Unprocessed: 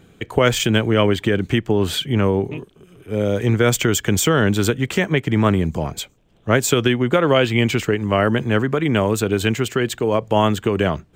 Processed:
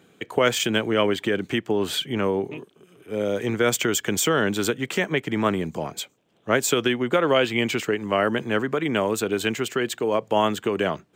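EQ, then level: Bessel high-pass 250 Hz, order 2; -3.0 dB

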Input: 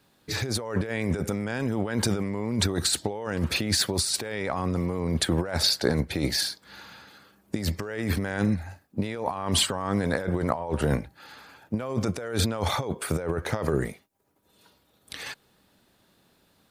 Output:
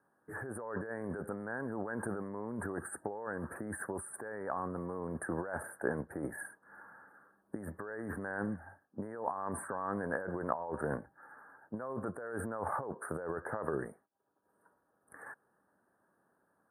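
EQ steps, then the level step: HPF 530 Hz 6 dB/oct; Chebyshev band-stop 1700–8900 Hz, order 5; air absorption 64 m; -4.0 dB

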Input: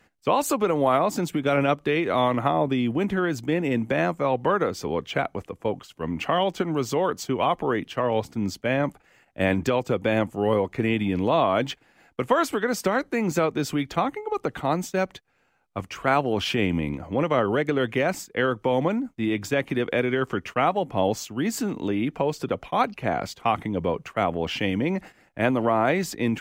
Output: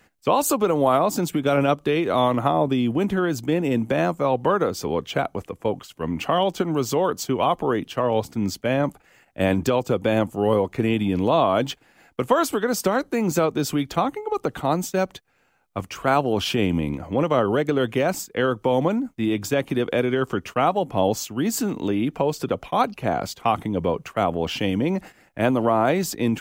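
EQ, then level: dynamic EQ 2000 Hz, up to -7 dB, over -44 dBFS, Q 2.1; high shelf 8800 Hz +7 dB; +2.5 dB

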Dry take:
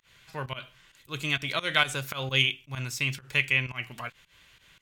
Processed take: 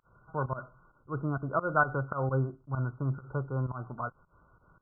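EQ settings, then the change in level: brick-wall FIR low-pass 1500 Hz; +3.5 dB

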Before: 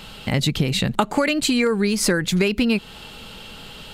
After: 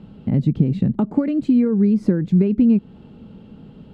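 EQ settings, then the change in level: band-pass 240 Hz, Q 1.3; low shelf 250 Hz +11.5 dB; 0.0 dB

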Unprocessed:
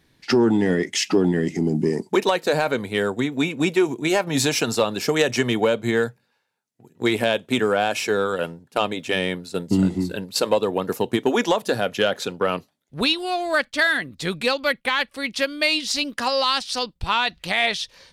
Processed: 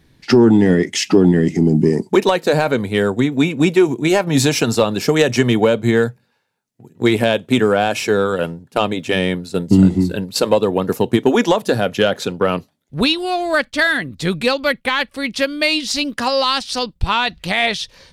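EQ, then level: low shelf 210 Hz +5.5 dB; low shelf 490 Hz +3 dB; +3.0 dB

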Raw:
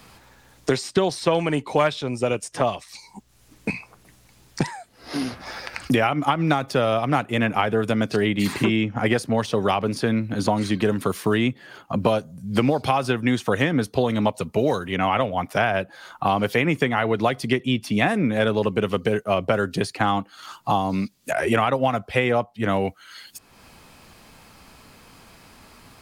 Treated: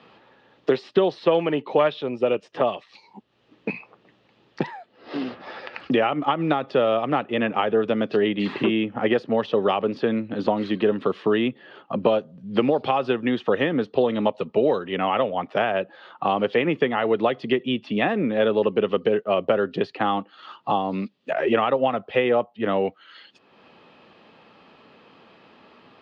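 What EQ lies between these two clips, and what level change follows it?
speaker cabinet 280–3000 Hz, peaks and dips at 280 Hz -3 dB, 710 Hz -5 dB, 1000 Hz -6 dB, 1500 Hz -8 dB, 2200 Hz -10 dB; +4.0 dB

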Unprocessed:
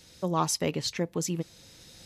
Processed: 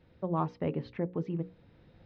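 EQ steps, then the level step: air absorption 290 m; tape spacing loss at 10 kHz 38 dB; notches 60/120/180/240/300/360/420/480/540 Hz; 0.0 dB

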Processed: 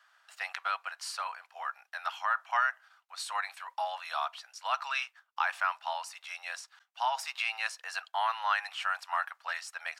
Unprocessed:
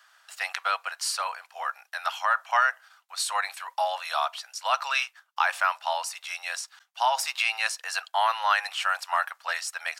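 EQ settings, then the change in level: high shelf 4300 Hz -10 dB; dynamic EQ 520 Hz, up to -7 dB, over -45 dBFS, Q 2; HPF 360 Hz 6 dB/oct; -4.0 dB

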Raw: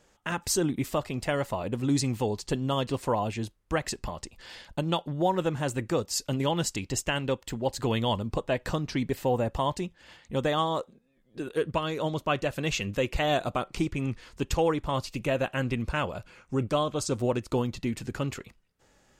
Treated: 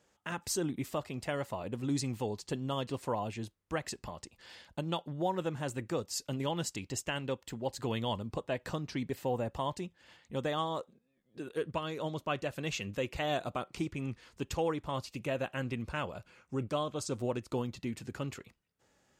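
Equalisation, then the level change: HPF 69 Hz; -7.0 dB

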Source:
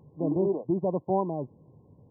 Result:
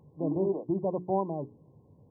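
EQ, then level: notches 60/120/180/240/300/360/420 Hz; -2.0 dB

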